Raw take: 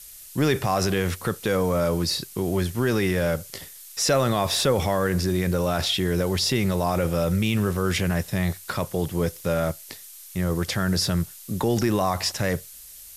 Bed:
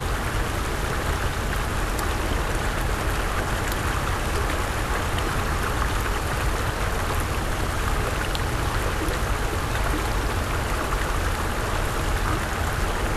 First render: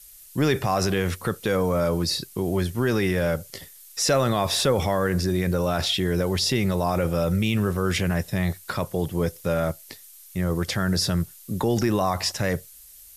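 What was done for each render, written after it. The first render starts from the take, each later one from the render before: denoiser 6 dB, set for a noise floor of -44 dBFS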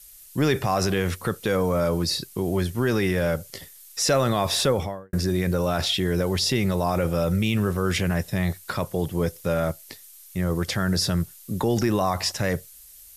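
4.64–5.13 studio fade out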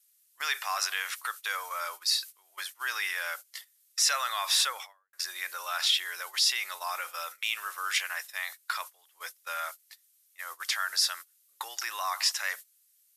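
HPF 1100 Hz 24 dB/oct; gate -40 dBFS, range -19 dB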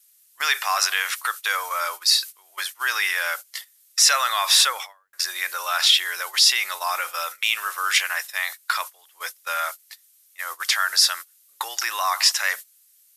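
gain +9 dB

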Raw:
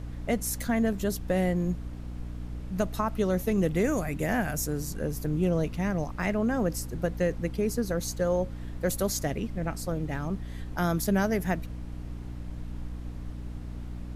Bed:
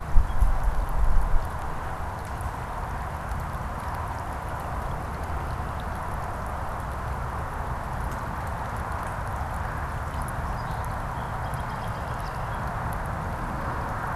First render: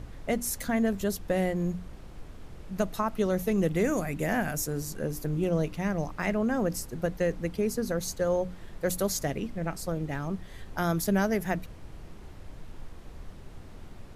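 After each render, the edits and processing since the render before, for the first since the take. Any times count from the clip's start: notches 60/120/180/240/300 Hz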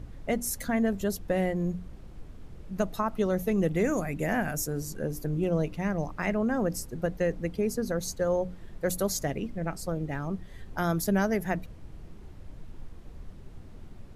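denoiser 6 dB, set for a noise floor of -46 dBFS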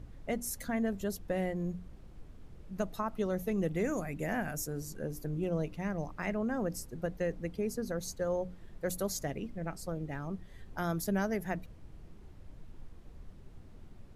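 gain -6 dB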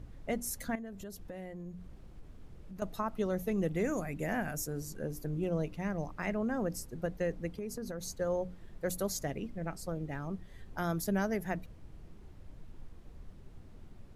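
0.75–2.82 compressor 4:1, threshold -42 dBFS; 7.54–8.1 compressor, threshold -35 dBFS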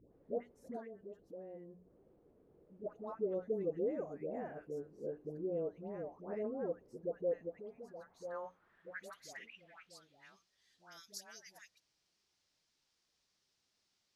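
dispersion highs, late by 0.141 s, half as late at 940 Hz; band-pass sweep 450 Hz -> 5200 Hz, 7.16–10.52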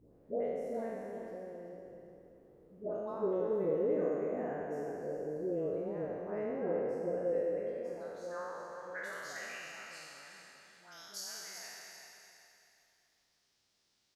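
spectral trails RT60 2.52 s; on a send: feedback echo 0.383 s, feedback 32%, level -8.5 dB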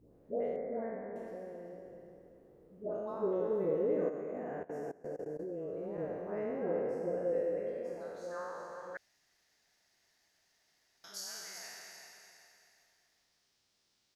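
0.56–1.16 steep low-pass 2300 Hz 96 dB/oct; 4.09–5.98 level quantiser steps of 20 dB; 8.97–11.04 room tone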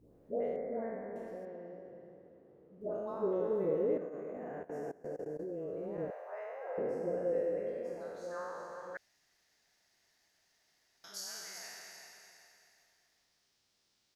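1.45–2.81 BPF 100–3100 Hz; 3.97–4.72 compressor, threshold -38 dBFS; 6.1–6.78 steep high-pass 570 Hz

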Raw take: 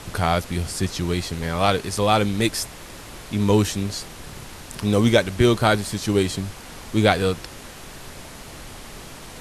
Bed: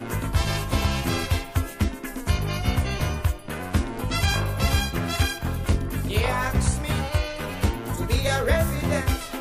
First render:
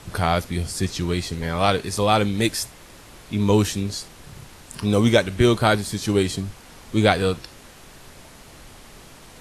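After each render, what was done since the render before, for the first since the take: noise print and reduce 6 dB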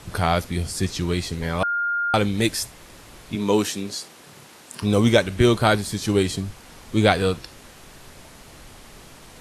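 1.63–2.14 bleep 1410 Hz -20.5 dBFS; 3.35–4.82 HPF 220 Hz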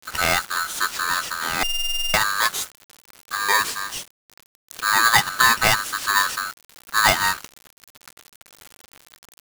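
requantised 6-bit, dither none; polarity switched at an audio rate 1400 Hz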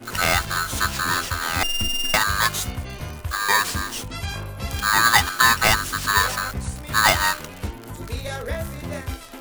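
add bed -7 dB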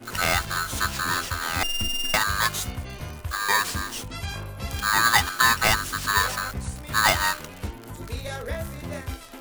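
gain -3 dB

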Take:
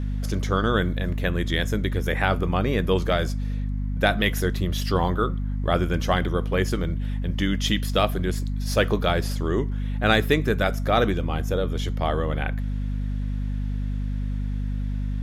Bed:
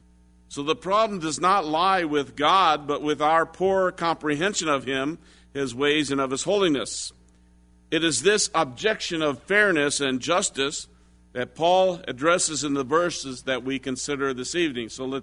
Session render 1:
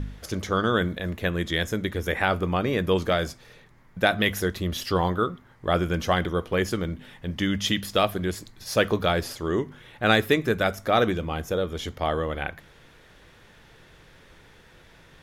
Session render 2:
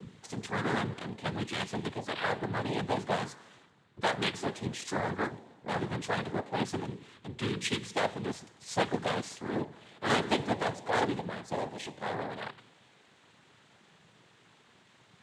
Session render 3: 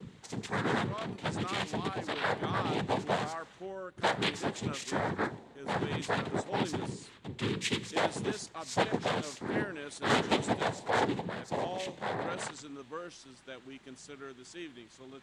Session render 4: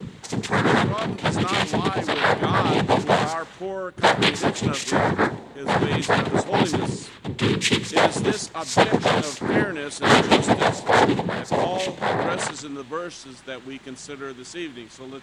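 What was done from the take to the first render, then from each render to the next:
de-hum 50 Hz, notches 5
resonator 220 Hz, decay 1.4 s, mix 60%; noise vocoder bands 6
add bed -20.5 dB
gain +12 dB

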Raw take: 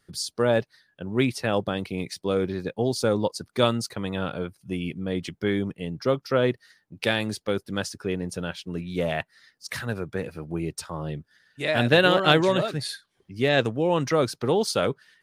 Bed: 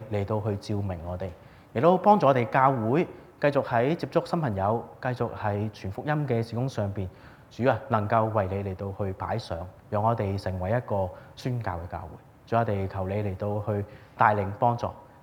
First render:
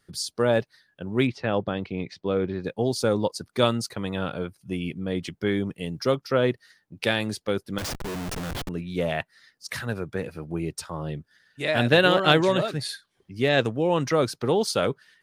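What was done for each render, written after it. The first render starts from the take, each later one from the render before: 1.27–2.64 air absorption 190 m; 5.72–6.15 high shelf 3900 Hz +9 dB; 7.78–8.69 Schmitt trigger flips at -37 dBFS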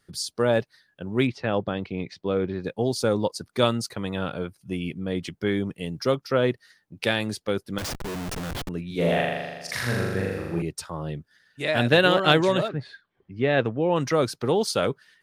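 8.87–10.62 flutter echo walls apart 7 m, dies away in 1.4 s; 12.67–13.95 LPF 1600 Hz -> 3000 Hz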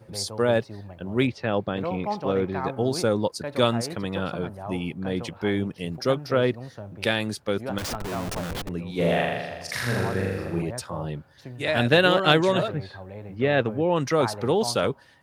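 add bed -10.5 dB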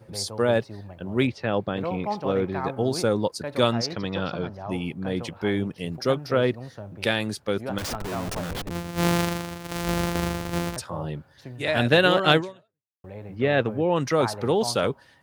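3.72–4.7 resonant high shelf 7100 Hz -10.5 dB, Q 3; 8.7–10.77 sample sorter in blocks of 256 samples; 12.37–13.04 fade out exponential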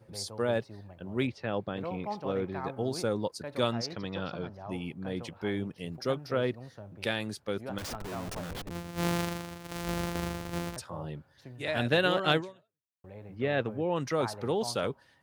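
gain -7.5 dB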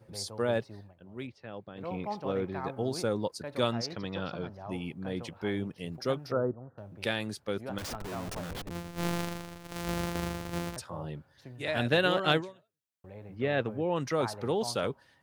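0.78–1.91 dip -10.5 dB, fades 0.16 s; 6.32–6.78 elliptic low-pass 1400 Hz; 8.88–9.76 half-wave gain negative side -7 dB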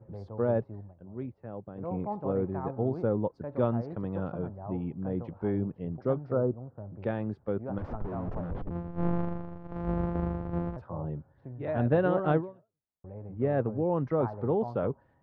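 Chebyshev low-pass 1000 Hz, order 2; tilt -2 dB/oct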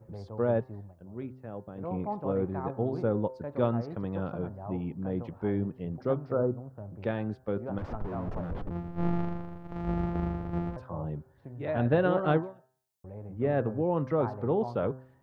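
high shelf 2900 Hz +11.5 dB; de-hum 129.3 Hz, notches 14

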